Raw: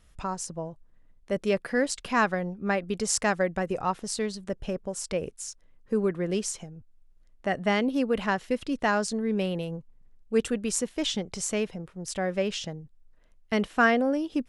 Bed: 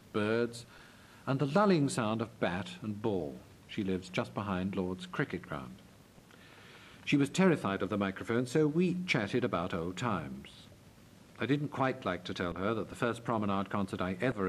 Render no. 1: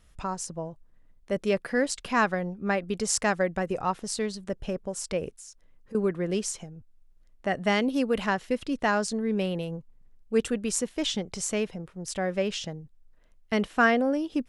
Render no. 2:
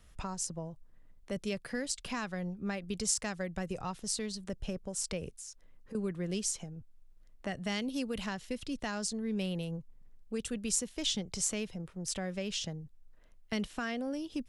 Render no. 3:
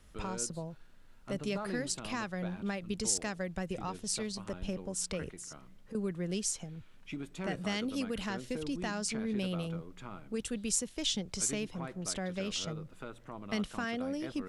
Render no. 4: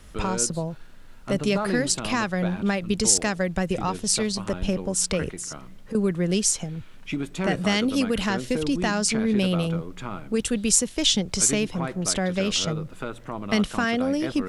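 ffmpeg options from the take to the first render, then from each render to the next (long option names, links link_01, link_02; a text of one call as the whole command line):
ffmpeg -i in.wav -filter_complex "[0:a]asettb=1/sr,asplit=3[link_01][link_02][link_03];[link_01]atrim=end=5.324[link_04];[link_02]atrim=start=5.32:end=5.95,asetpts=PTS-STARTPTS,afade=type=in:duration=0.004:curve=qsin,afade=type=out:start_time=0.626:duration=0.004:curve=qsin,acompressor=threshold=-45dB:ratio=3:attack=3.2:release=140:knee=1:detection=peak[link_05];[link_03]atrim=start=5.946[link_06];[link_04][link_05]acrossfade=duration=0.004:curve1=hsin:curve2=qsin[link_07];[link_07][link_06]acrossfade=duration=0.004:curve1=qsin:curve2=hsin,asettb=1/sr,asplit=3[link_08][link_09][link_10];[link_08]atrim=end=7.604[link_11];[link_09]atrim=start=7.6:end=8.29,asetpts=PTS-STARTPTS,afade=type=in:duration=0.004:curve=qsin,afade=type=out:start_time=0.686:duration=0.004:curve=qsin,equalizer=frequency=10000:width=0.32:gain=5[link_12];[link_10]atrim=start=8.286[link_13];[link_11][link_12]acrossfade=duration=0.004:curve1=hsin:curve2=qsin[link_14];[link_14][link_13]acrossfade=duration=0.004:curve1=qsin:curve2=hsin" out.wav
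ffmpeg -i in.wav -filter_complex "[0:a]alimiter=limit=-16.5dB:level=0:latency=1:release=196,acrossover=split=170|3000[link_01][link_02][link_03];[link_02]acompressor=threshold=-46dB:ratio=2[link_04];[link_01][link_04][link_03]amix=inputs=3:normalize=0" out.wav
ffmpeg -i in.wav -i bed.wav -filter_complex "[1:a]volume=-13dB[link_01];[0:a][link_01]amix=inputs=2:normalize=0" out.wav
ffmpeg -i in.wav -af "volume=12dB" out.wav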